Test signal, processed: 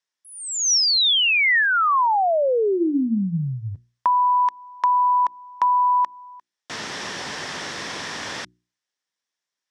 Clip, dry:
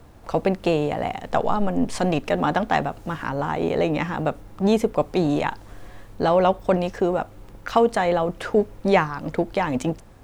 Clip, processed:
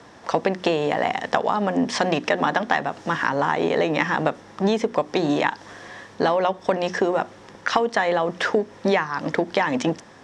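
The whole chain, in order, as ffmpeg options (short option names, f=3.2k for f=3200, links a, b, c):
-filter_complex "[0:a]acrossover=split=5800[a][b];[b]acompressor=threshold=-45dB:ratio=4:attack=1:release=60[c];[a][c]amix=inputs=2:normalize=0,highpass=190,equalizer=f=1k:t=q:w=4:g=4,equalizer=f=1.8k:t=q:w=4:g=9,equalizer=f=3.4k:t=q:w=4:g=5,equalizer=f=5.5k:t=q:w=4:g=9,lowpass=f=8.4k:w=0.5412,lowpass=f=8.4k:w=1.3066,acompressor=threshold=-21dB:ratio=12,bandreject=f=60:t=h:w=6,bandreject=f=120:t=h:w=6,bandreject=f=180:t=h:w=6,bandreject=f=240:t=h:w=6,bandreject=f=300:t=h:w=6,bandreject=f=360:t=h:w=6,volume=5dB"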